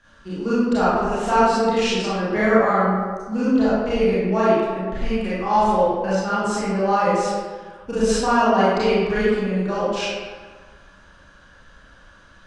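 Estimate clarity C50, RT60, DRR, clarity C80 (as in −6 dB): −4.5 dB, 1.5 s, −11.5 dB, −0.5 dB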